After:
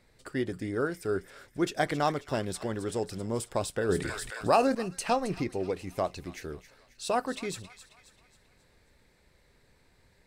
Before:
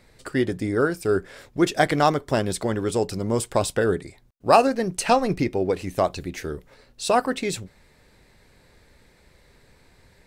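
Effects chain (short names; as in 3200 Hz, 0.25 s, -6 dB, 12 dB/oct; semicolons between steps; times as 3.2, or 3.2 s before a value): on a send: thin delay 0.269 s, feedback 46%, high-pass 1500 Hz, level -12 dB; 3.89–4.75 on the sum: fast leveller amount 50%; gain -8.5 dB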